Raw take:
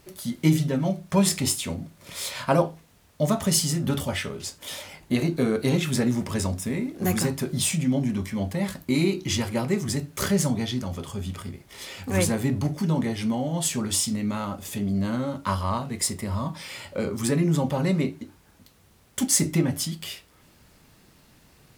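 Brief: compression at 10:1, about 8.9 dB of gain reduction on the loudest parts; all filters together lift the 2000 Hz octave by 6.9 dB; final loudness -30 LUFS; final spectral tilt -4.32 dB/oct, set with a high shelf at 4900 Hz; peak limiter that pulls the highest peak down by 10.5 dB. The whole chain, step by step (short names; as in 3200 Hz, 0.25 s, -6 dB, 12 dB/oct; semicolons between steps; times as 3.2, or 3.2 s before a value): bell 2000 Hz +7.5 dB; high shelf 4900 Hz +4 dB; compressor 10:1, threshold -23 dBFS; gain +1 dB; limiter -20 dBFS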